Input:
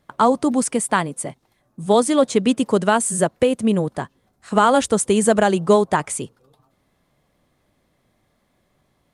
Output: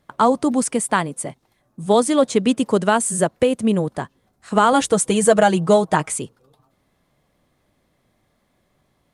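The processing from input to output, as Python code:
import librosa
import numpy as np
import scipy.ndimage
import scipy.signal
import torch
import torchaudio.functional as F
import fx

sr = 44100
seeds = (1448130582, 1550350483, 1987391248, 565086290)

y = fx.comb(x, sr, ms=6.3, depth=0.62, at=(4.72, 6.19))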